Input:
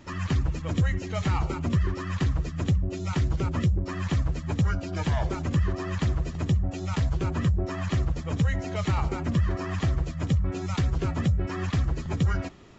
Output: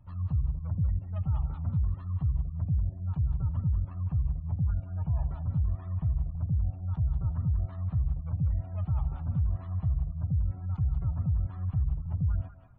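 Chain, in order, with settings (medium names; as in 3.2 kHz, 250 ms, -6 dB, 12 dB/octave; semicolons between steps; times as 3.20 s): median filter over 25 samples; spectral gate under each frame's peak -30 dB strong; FFT filter 120 Hz 0 dB, 370 Hz -28 dB, 720 Hz -11 dB; peak limiter -21 dBFS, peak gain reduction 5.5 dB; thinning echo 189 ms, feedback 28%, high-pass 520 Hz, level -6.5 dB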